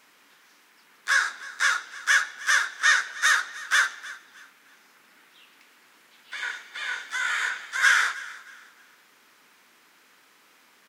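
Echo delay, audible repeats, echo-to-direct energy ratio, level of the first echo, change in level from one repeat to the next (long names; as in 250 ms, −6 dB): 312 ms, 2, −18.0 dB, −18.5 dB, −10.5 dB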